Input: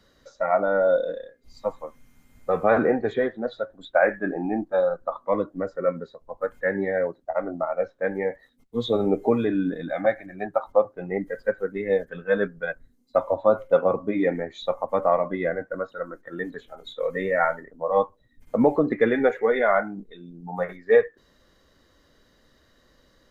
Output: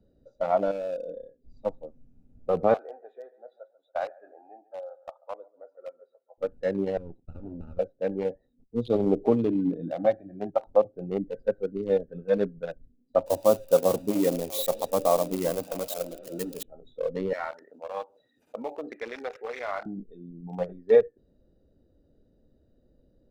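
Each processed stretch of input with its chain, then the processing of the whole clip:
0:00.71–0:01.17: low-shelf EQ 420 Hz −6 dB + downward compressor 2 to 1, threshold −28 dBFS
0:02.74–0:06.38: high-pass filter 760 Hz 24 dB per octave + high-shelf EQ 2,200 Hz −12 dB + repeating echo 141 ms, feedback 37%, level −18 dB
0:06.97–0:07.79: lower of the sound and its delayed copy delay 0.75 ms + downward compressor 8 to 1, threshold −32 dBFS
0:09.54–0:10.50: high-pass filter 54 Hz + double-tracking delay 29 ms −12 dB
0:13.26–0:16.63: spike at every zero crossing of −18.5 dBFS + echo through a band-pass that steps 213 ms, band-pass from 2,700 Hz, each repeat −0.7 octaves, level −5 dB
0:17.33–0:19.86: high-pass filter 1,300 Hz + envelope flattener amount 50%
whole clip: adaptive Wiener filter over 41 samples; parametric band 1,700 Hz −12 dB 0.98 octaves

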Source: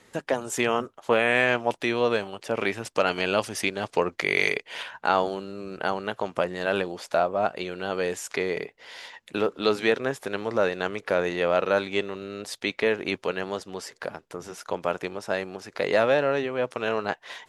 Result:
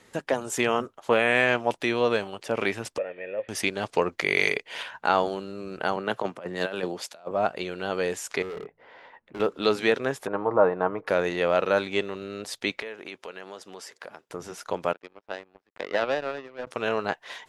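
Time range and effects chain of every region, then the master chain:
0:02.98–0:03.49: spike at every zero crossing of −18 dBFS + formant resonators in series e
0:05.96–0:07.31: high-pass filter 120 Hz + compressor whose output falls as the input rises −28 dBFS, ratio −0.5 + multiband upward and downward expander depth 100%
0:08.42–0:09.40: low-pass filter 1,300 Hz + hum removal 53.44 Hz, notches 3 + gain into a clipping stage and back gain 33 dB
0:10.27–0:11.07: low-pass with resonance 1,000 Hz, resonance Q 2.6 + comb filter 6.4 ms, depth 39%
0:12.82–0:14.30: high-pass filter 390 Hz 6 dB per octave + notch filter 4,300 Hz, Q 23 + downward compressor 2.5 to 1, threshold −39 dBFS
0:14.93–0:16.67: band-pass filter 230–2,400 Hz + power curve on the samples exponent 2
whole clip: no processing

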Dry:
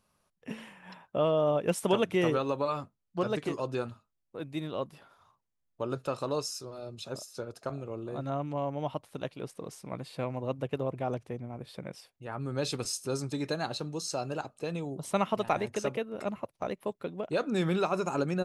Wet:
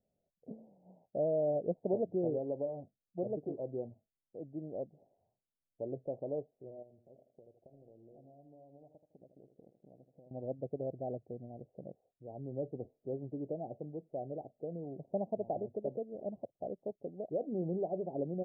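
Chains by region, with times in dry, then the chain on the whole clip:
0:06.82–0:10.31: mu-law and A-law mismatch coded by A + downward compressor 16 to 1, threshold −47 dBFS + repeating echo 79 ms, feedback 37%, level −10 dB
whole clip: Butterworth low-pass 730 Hz 72 dB per octave; spectral tilt +2 dB per octave; level −3 dB

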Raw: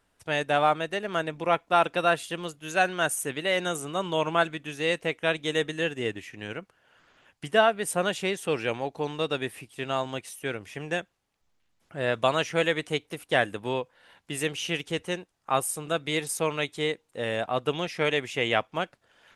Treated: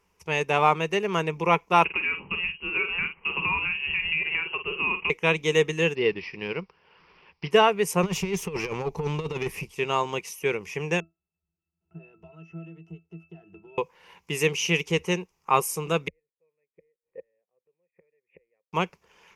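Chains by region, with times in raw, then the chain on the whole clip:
0:01.84–0:05.10: downward compressor, threshold −30 dBFS + double-tracking delay 48 ms −9 dB + voice inversion scrambler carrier 3,000 Hz
0:05.95–0:07.51: one scale factor per block 7 bits + bad sample-rate conversion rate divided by 4×, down none, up filtered
0:08.03–0:09.72: compressor whose output falls as the input rises −31 dBFS, ratio −0.5 + low-shelf EQ 170 Hz +12 dB + tube saturation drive 26 dB, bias 0.5
0:11.00–0:13.78: leveller curve on the samples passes 1 + downward compressor 16 to 1, threshold −33 dBFS + resonances in every octave E, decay 0.2 s
0:16.08–0:18.73: gate with flip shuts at −24 dBFS, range −40 dB + formant resonators in series e + high-frequency loss of the air 410 metres
whole clip: EQ curve with evenly spaced ripples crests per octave 0.79, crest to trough 12 dB; automatic gain control gain up to 3 dB

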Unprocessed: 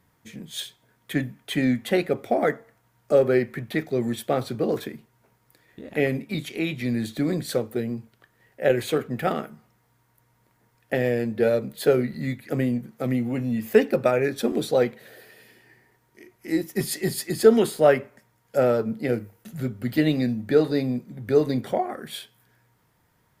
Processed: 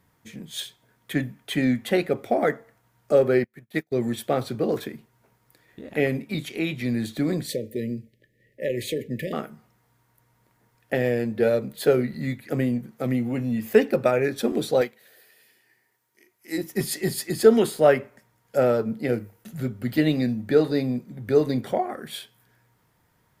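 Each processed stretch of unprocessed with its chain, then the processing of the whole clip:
0:03.44–0:03.92: high-shelf EQ 5,800 Hz +10 dB + expander for the loud parts 2.5 to 1, over −44 dBFS
0:07.47–0:09.33: downward compressor 3 to 1, threshold −23 dBFS + linear-phase brick-wall band-stop 630–1,700 Hz + one half of a high-frequency compander decoder only
0:14.81–0:16.58: spectral tilt +2.5 dB per octave + expander for the loud parts, over −39 dBFS
whole clip: no processing

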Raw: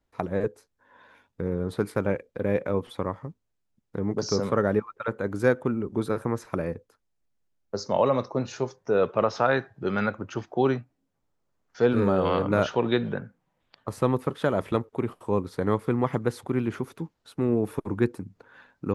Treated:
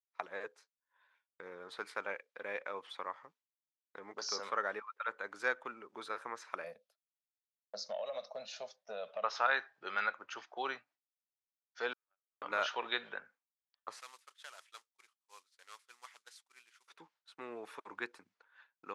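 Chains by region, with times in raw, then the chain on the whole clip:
0:06.64–0:09.24: drawn EQ curve 130 Hz 0 dB, 210 Hz +9 dB, 320 Hz −20 dB, 630 Hz +12 dB, 940 Hz −12 dB, 1,800 Hz −9 dB, 3,700 Hz +2 dB, 7,100 Hz −4 dB, 12,000 Hz +12 dB + downward compressor 10 to 1, threshold −21 dBFS
0:11.93–0:12.42: high-pass filter 660 Hz + noise gate −23 dBFS, range −59 dB
0:14.00–0:16.88: variable-slope delta modulation 64 kbit/s + first difference
whole clip: low-pass filter 5,600 Hz 12 dB per octave; downward expander −45 dBFS; high-pass filter 1,200 Hz 12 dB per octave; level −2 dB

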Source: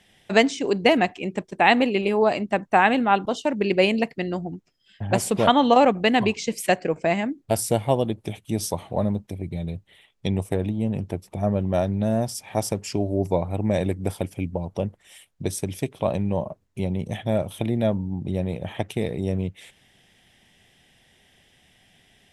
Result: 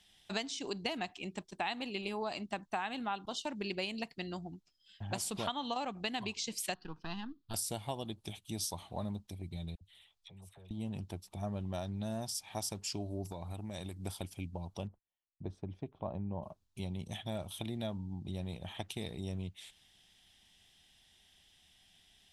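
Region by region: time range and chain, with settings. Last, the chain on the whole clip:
0:06.74–0:07.54: gain on one half-wave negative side −3 dB + high-shelf EQ 6,700 Hz −10 dB + phaser with its sweep stopped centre 2,200 Hz, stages 6
0:09.75–0:10.71: parametric band 280 Hz −13.5 dB 0.61 octaves + downward compressor 2 to 1, threshold −51 dBFS + all-pass dispersion lows, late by 62 ms, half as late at 920 Hz
0:13.25–0:14.04: high-shelf EQ 7,500 Hz +7.5 dB + downward compressor 5 to 1, threshold −24 dBFS
0:14.87–0:16.43: low-pass filter 1,000 Hz + noise gate −59 dBFS, range −26 dB
whole clip: octave-band graphic EQ 125/250/500/2,000/4,000 Hz −8/−5/−12/−8/+6 dB; downward compressor 6 to 1, threshold −28 dBFS; level −5.5 dB

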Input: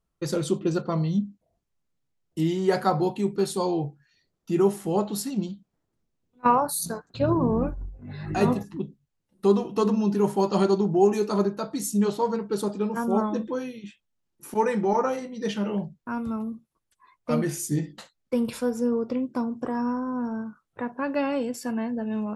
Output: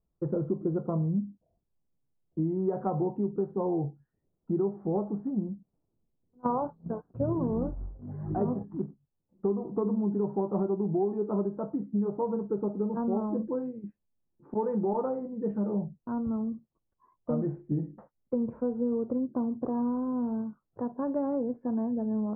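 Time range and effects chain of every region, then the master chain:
0:07.33–0:09.50: low-shelf EQ 81 Hz −3.5 dB + floating-point word with a short mantissa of 2 bits
whole clip: Bessel low-pass filter 690 Hz, order 6; downward compressor, threshold −25 dBFS

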